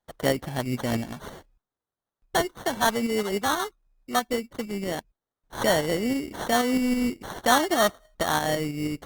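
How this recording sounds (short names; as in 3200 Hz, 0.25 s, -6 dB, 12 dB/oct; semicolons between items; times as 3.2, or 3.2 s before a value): tremolo saw up 6.2 Hz, depth 45%; aliases and images of a low sample rate 2500 Hz, jitter 0%; Opus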